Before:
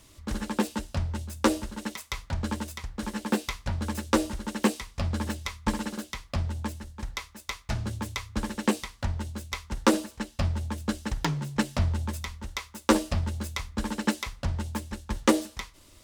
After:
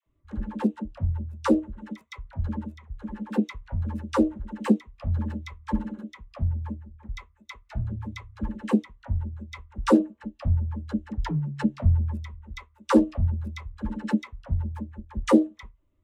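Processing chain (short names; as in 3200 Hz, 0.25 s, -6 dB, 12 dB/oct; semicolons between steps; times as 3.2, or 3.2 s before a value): Wiener smoothing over 9 samples; dispersion lows, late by 65 ms, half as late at 610 Hz; spectral expander 1.5:1; gain +4 dB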